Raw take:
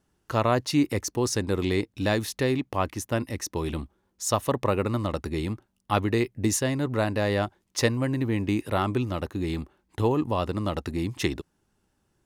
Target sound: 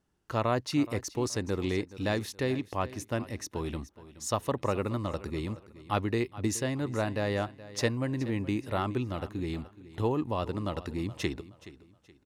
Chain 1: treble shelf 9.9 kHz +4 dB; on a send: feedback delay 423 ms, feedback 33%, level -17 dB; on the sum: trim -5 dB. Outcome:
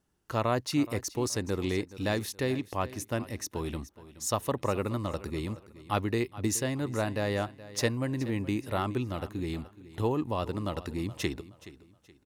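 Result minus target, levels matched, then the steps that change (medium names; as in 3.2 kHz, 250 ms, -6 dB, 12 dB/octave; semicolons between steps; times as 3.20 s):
8 kHz band +3.0 dB
change: treble shelf 9.9 kHz -7 dB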